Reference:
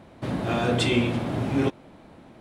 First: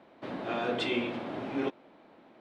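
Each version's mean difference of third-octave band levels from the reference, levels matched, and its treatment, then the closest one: 4.5 dB: three-band isolator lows -20 dB, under 230 Hz, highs -19 dB, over 4800 Hz; gain -5.5 dB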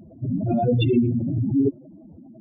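14.0 dB: spectral contrast raised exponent 3.9; gain +4.5 dB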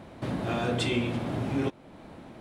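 2.5 dB: compressor 1.5:1, threshold -41 dBFS, peak gain reduction 8.5 dB; gain +2.5 dB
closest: third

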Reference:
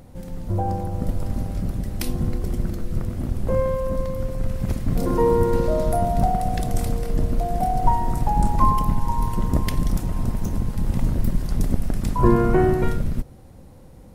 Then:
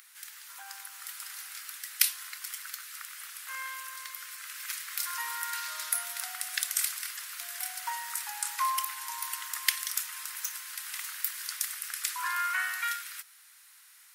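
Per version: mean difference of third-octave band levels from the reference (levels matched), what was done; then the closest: 25.5 dB: steep high-pass 1400 Hz 36 dB/oct; high shelf 9300 Hz +6.5 dB; gain +6 dB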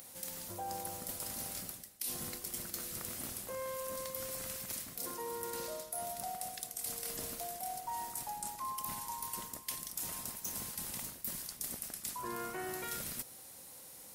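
13.0 dB: differentiator; reverse; compressor 20:1, threshold -49 dBFS, peak gain reduction 25.5 dB; reverse; gain +12 dB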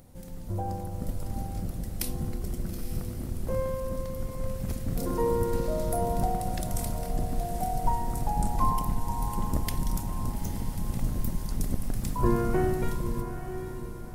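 4.5 dB: high shelf 5200 Hz +10.5 dB; diffused feedback echo 0.881 s, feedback 41%, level -9.5 dB; gain -8.5 dB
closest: third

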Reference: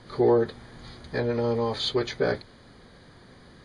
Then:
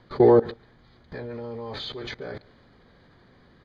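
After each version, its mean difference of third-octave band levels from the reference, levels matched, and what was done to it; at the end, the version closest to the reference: 7.0 dB: LPF 3800 Hz 12 dB/oct; level quantiser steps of 21 dB; echo 0.14 s -23.5 dB; gain +7 dB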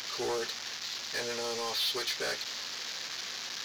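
14.5 dB: delta modulation 32 kbps, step -34.5 dBFS; differentiator; sample leveller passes 2; gain +7 dB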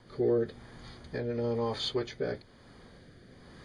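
2.5 dB: recorder AGC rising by 5.2 dB/s; notch 4000 Hz, Q 12; rotary speaker horn 1 Hz; gain -4.5 dB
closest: third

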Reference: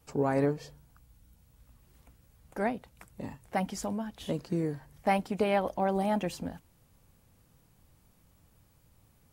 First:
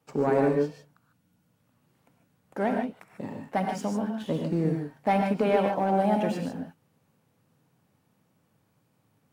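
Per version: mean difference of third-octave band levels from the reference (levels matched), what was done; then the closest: 6.0 dB: HPF 130 Hz 24 dB/oct; high shelf 3800 Hz -10 dB; sample leveller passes 1; non-linear reverb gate 0.17 s rising, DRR 2.5 dB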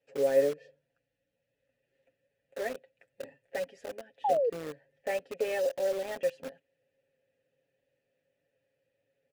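10.0 dB: vowel filter e; comb 7.3 ms, depth 68%; in parallel at -3 dB: bit-crush 7-bit; on the sum: painted sound fall, 4.24–4.5, 440–880 Hz -28 dBFS; gain +1.5 dB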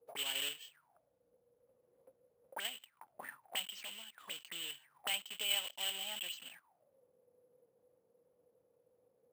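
13.5 dB: block floating point 3-bit; HPF 90 Hz; auto-wah 460–3000 Hz, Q 13, up, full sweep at -32 dBFS; careless resampling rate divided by 4×, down none, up hold; gain +11.5 dB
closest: first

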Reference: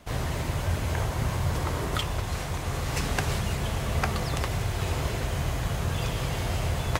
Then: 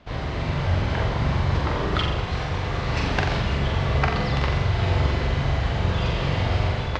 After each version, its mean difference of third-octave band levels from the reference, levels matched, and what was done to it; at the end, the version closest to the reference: 6.5 dB: LPF 4600 Hz 24 dB/oct; flutter echo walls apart 7.5 m, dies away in 0.63 s; AGC gain up to 3.5 dB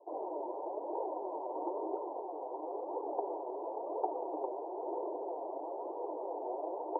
26.0 dB: Chebyshev band-pass 310–960 Hz, order 5; flange 1 Hz, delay 1.8 ms, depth 6.5 ms, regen +28%; gain +2.5 dB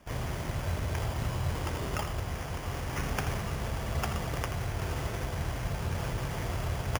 1.5 dB: sample-and-hold 11×; on a send: echo 82 ms -9.5 dB; on the sum: gain -5 dB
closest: third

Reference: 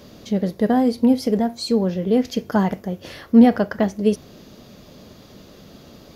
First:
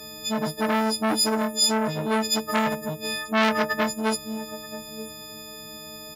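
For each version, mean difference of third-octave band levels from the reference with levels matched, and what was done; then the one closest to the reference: 11.5 dB: frequency quantiser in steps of 6 st; low shelf 350 Hz -4 dB; echo 0.932 s -19.5 dB; core saturation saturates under 2000 Hz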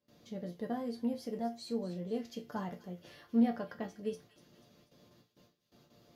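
2.5 dB: gate with hold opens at -34 dBFS; HPF 42 Hz; resonator bank A#2 major, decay 0.2 s; on a send: thin delay 0.244 s, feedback 54%, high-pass 2200 Hz, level -12.5 dB; on the sum: gain -6.5 dB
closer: second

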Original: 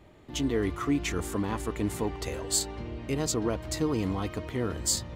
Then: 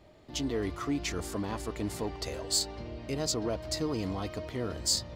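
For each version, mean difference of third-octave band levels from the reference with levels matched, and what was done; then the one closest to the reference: 1.5 dB: bell 630 Hz +7 dB 0.39 oct; soft clip -16.5 dBFS, distortion -23 dB; bell 4800 Hz +9 dB 0.63 oct; gain -4 dB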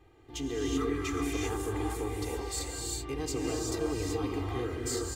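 6.5 dB: comb 2.5 ms, depth 89%; limiter -18 dBFS, peak gain reduction 6.5 dB; non-linear reverb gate 0.41 s rising, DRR -2 dB; gain -8 dB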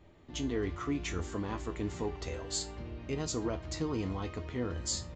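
3.0 dB: low shelf 69 Hz +5.5 dB; resonator 83 Hz, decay 0.25 s, harmonics all, mix 70%; downsampling 16000 Hz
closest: first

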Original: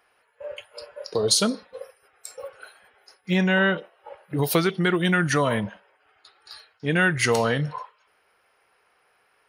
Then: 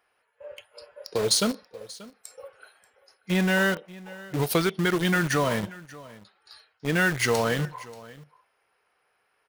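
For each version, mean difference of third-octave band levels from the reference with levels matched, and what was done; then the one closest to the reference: 5.5 dB: in parallel at -4.5 dB: bit-crush 4-bit; on the sum: echo 0.584 s -20 dB; gain -6.5 dB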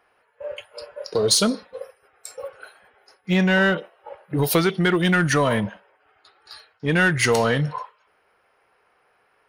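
1.5 dB: in parallel at -5.5 dB: hard clip -22.5 dBFS, distortion -8 dB; on the sum: mismatched tape noise reduction decoder only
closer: second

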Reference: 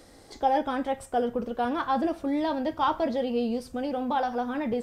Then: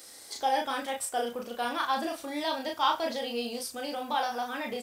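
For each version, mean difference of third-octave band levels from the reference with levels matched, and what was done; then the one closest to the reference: 9.0 dB: tilt +4.5 dB/oct; doubler 34 ms -3.5 dB; gain -2.5 dB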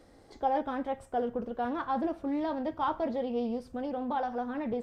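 3.0 dB: high shelf 2700 Hz -10 dB; Doppler distortion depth 0.11 ms; gain -4 dB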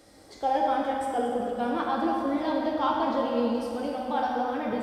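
5.0 dB: HPF 82 Hz 6 dB/oct; plate-style reverb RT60 2.8 s, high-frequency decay 0.75×, DRR -2 dB; gain -3.5 dB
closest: second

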